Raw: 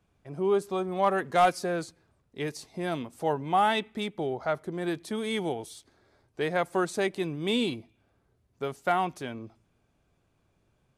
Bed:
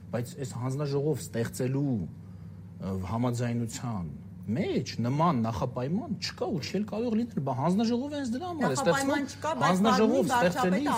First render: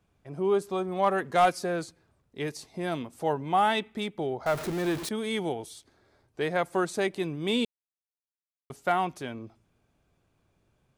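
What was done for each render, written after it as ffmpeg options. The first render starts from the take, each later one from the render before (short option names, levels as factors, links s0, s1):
-filter_complex "[0:a]asettb=1/sr,asplit=3[s0][s1][s2];[s0]atrim=end=4.464[s3];[s1]atrim=start=4.46:end=5.09,asetpts=PTS-STARTPTS,afade=t=in:d=0.004:c=qsin,afade=t=out:st=0.626:d=0.004:c=qsin,aeval=exprs='val(0)+0.5*0.0266*sgn(val(0))':c=same[s4];[s2]atrim=start=5.086[s5];[s3][s4]acrossfade=d=0.004:c1=hsin:c2=qsin[s6];[s6][s5]acrossfade=d=0.004:c1=qsin:c2=hsin,asplit=3[s7][s8][s9];[s7]atrim=end=7.65,asetpts=PTS-STARTPTS,afade=t=out:st=7.646:d=0.004:c=hsin[s10];[s8]atrim=start=7.65:end=8.7,asetpts=PTS-STARTPTS,volume=0[s11];[s9]atrim=start=8.7,asetpts=PTS-STARTPTS,afade=t=in:d=0.004:c=hsin[s12];[s10][s11][s12]concat=n=3:v=0:a=1"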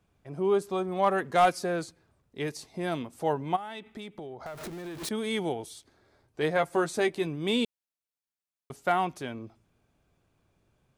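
-filter_complex "[0:a]asplit=3[s0][s1][s2];[s0]afade=t=out:st=3.55:d=0.02[s3];[s1]acompressor=threshold=0.0141:ratio=6:attack=3.2:release=140:knee=1:detection=peak,afade=t=in:st=3.55:d=0.02,afade=t=out:st=5:d=0.02[s4];[s2]afade=t=in:st=5:d=0.02[s5];[s3][s4][s5]amix=inputs=3:normalize=0,asettb=1/sr,asplit=3[s6][s7][s8];[s6]atrim=end=6.404[s9];[s7]atrim=start=6.4:end=7.27,asetpts=PTS-STARTPTS,afade=t=in:d=0.004:c=qsin,afade=t=out:st=0.866:d=0.004:c=qsin,asplit=2[s10][s11];[s11]adelay=13,volume=0.398[s12];[s10][s12]amix=inputs=2:normalize=0,atrim=end_sample=38367[s13];[s8]atrim=start=7.266[s14];[s9][s13]acrossfade=d=0.004:c1=hsin:c2=qsin[s15];[s15][s14]acrossfade=d=0.004:c1=qsin:c2=hsin"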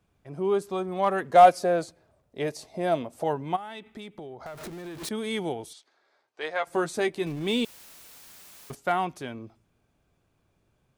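-filter_complex "[0:a]asettb=1/sr,asplit=3[s0][s1][s2];[s0]atrim=end=1.324[s3];[s1]atrim=start=1.32:end=3.24,asetpts=PTS-STARTPTS,afade=t=in:d=0.004:c=qsin,afade=t=out:st=1.916:d=0.004:c=qsin,equalizer=f=620:t=o:w=0.65:g=12[s4];[s2]atrim=start=3.236[s5];[s3][s4]acrossfade=d=0.004:c1=hsin:c2=qsin[s6];[s6][s5]acrossfade=d=0.004:c1=qsin:c2=hsin,asettb=1/sr,asplit=3[s7][s8][s9];[s7]atrim=end=5.734[s10];[s8]atrim=start=5.73:end=6.67,asetpts=PTS-STARTPTS,afade=t=in:d=0.004:c=qsin,afade=t=out:st=0.936:d=0.004:c=qsin,highpass=650,lowpass=6000[s11];[s9]atrim=start=6.666[s12];[s10][s11]acrossfade=d=0.004:c1=hsin:c2=qsin[s13];[s13][s12]acrossfade=d=0.004:c1=qsin:c2=hsin,asettb=1/sr,asplit=3[s14][s15][s16];[s14]atrim=end=7.264[s17];[s15]atrim=start=7.26:end=8.75,asetpts=PTS-STARTPTS,afade=t=in:d=0.004:c=qsin,afade=t=out:st=1.486:d=0.004:c=qsin,aeval=exprs='val(0)+0.5*0.01*sgn(val(0))':c=same[s18];[s16]atrim=start=8.746[s19];[s17][s18]acrossfade=d=0.004:c1=hsin:c2=qsin[s20];[s20][s19]acrossfade=d=0.004:c1=qsin:c2=hsin"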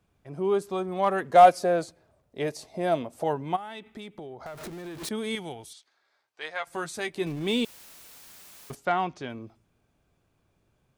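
-filter_complex "[0:a]asettb=1/sr,asplit=3[s0][s1][s2];[s0]atrim=end=5.354[s3];[s1]atrim=start=5.35:end=7.15,asetpts=PTS-STARTPTS,afade=t=in:d=0.004:c=qsin,afade=t=out:st=1.796:d=0.004:c=qsin,equalizer=f=380:w=0.5:g=-9[s4];[s2]atrim=start=7.146[s5];[s3][s4]acrossfade=d=0.004:c1=hsin:c2=qsin[s6];[s6][s5]acrossfade=d=0.004:c1=qsin:c2=hsin,asettb=1/sr,asplit=3[s7][s8][s9];[s7]atrim=end=8.854[s10];[s8]atrim=start=8.85:end=9.3,asetpts=PTS-STARTPTS,afade=t=in:d=0.004:c=qsin,afade=t=out:st=0.446:d=0.004:c=qsin,lowpass=f=6300:w=0.5412,lowpass=f=6300:w=1.3066[s11];[s9]atrim=start=9.296[s12];[s10][s11]acrossfade=d=0.004:c1=hsin:c2=qsin[s13];[s13][s12]acrossfade=d=0.004:c1=qsin:c2=hsin"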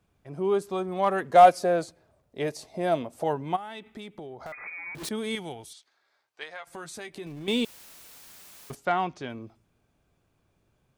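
-filter_complex "[0:a]asettb=1/sr,asplit=3[s0][s1][s2];[s0]atrim=end=4.524[s3];[s1]atrim=start=4.52:end=4.95,asetpts=PTS-STARTPTS,afade=t=in:d=0.004:c=qsin,afade=t=out:st=0.426:d=0.004:c=qsin,lowpass=f=2200:t=q:w=0.5098,lowpass=f=2200:t=q:w=0.6013,lowpass=f=2200:t=q:w=0.9,lowpass=f=2200:t=q:w=2.563,afreqshift=-2600[s4];[s2]atrim=start=4.946[s5];[s3][s4]acrossfade=d=0.004:c1=hsin:c2=qsin[s6];[s6][s5]acrossfade=d=0.004:c1=qsin:c2=hsin,asettb=1/sr,asplit=3[s7][s8][s9];[s7]atrim=end=6.434[s10];[s8]atrim=start=6.43:end=7.48,asetpts=PTS-STARTPTS,afade=t=in:d=0.004:c=qsin,afade=t=out:st=1.046:d=0.004:c=qsin,acompressor=threshold=0.0126:ratio=3:attack=3.2:release=140:knee=1:detection=peak[s11];[s9]atrim=start=7.476[s12];[s10][s11]acrossfade=d=0.004:c1=hsin:c2=qsin[s13];[s13][s12]acrossfade=d=0.004:c1=qsin:c2=hsin"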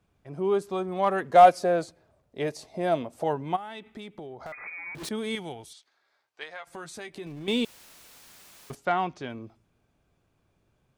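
-af "highshelf=f=9000:g=-5.5"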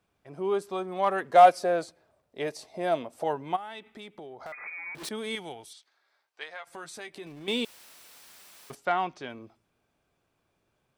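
-af "lowshelf=f=230:g=-11,bandreject=f=6700:w=19"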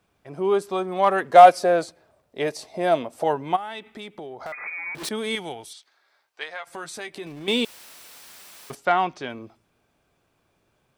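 -af "volume=2.11,alimiter=limit=0.891:level=0:latency=1"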